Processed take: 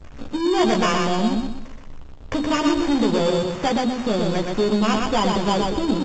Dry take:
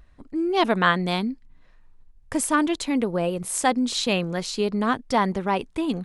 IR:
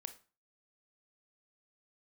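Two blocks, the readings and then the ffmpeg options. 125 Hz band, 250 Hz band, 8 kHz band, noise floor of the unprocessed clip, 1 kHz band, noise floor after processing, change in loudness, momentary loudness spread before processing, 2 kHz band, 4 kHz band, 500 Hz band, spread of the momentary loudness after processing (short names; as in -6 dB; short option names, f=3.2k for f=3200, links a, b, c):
+3.5 dB, +4.5 dB, -4.0 dB, -54 dBFS, +1.5 dB, -39 dBFS, +3.0 dB, 7 LU, -1.5 dB, +2.5 dB, +4.5 dB, 7 LU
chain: -filter_complex "[0:a]aeval=exprs='val(0)+0.5*0.0355*sgn(val(0))':c=same,agate=range=-33dB:threshold=-27dB:ratio=3:detection=peak,lowpass=f=1.7k:w=0.5412,lowpass=f=1.7k:w=1.3066,bandreject=f=50:t=h:w=6,bandreject=f=100:t=h:w=6,bandreject=f=150:t=h:w=6,bandreject=f=200:t=h:w=6,bandreject=f=250:t=h:w=6,bandreject=f=300:t=h:w=6,bandreject=f=350:t=h:w=6,acrusher=samples=11:mix=1:aa=0.000001,acontrast=28,acrusher=bits=10:mix=0:aa=0.000001,asoftclip=type=tanh:threshold=-17.5dB,acompressor=threshold=-26dB:ratio=2,asplit=2[a][b];[b]adelay=14,volume=-5.5dB[c];[a][c]amix=inputs=2:normalize=0,aecho=1:1:122|244|366|488|610:0.668|0.234|0.0819|0.0287|0.01,volume=3.5dB" -ar 16000 -c:a g722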